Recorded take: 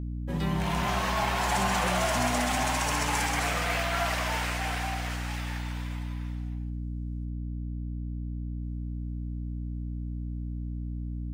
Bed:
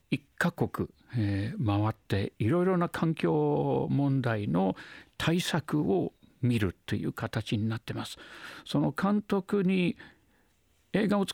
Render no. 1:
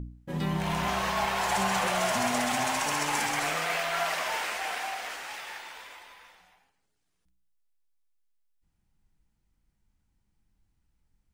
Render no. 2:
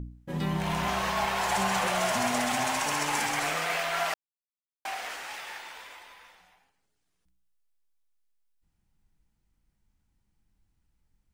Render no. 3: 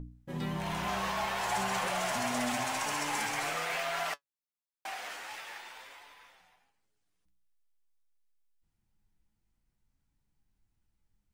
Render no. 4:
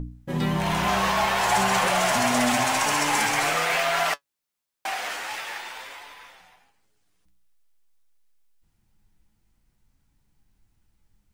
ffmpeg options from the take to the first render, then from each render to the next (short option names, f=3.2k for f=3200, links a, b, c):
-af "bandreject=f=60:t=h:w=4,bandreject=f=120:t=h:w=4,bandreject=f=180:t=h:w=4,bandreject=f=240:t=h:w=4,bandreject=f=300:t=h:w=4"
-filter_complex "[0:a]asplit=3[a][b][c];[a]atrim=end=4.14,asetpts=PTS-STARTPTS,afade=t=out:st=4.136:d=0.004:c=hsin[d];[b]atrim=start=4.14:end=4.85,asetpts=PTS-STARTPTS,volume=0[e];[c]atrim=start=4.85,asetpts=PTS-STARTPTS,afade=t=in:d=0.004:c=hsin[f];[d][e][f]concat=n=3:v=0:a=1"
-af "asoftclip=type=tanh:threshold=-17dB,flanger=delay=6.7:depth=3.3:regen=58:speed=0.49:shape=triangular"
-af "volume=10.5dB"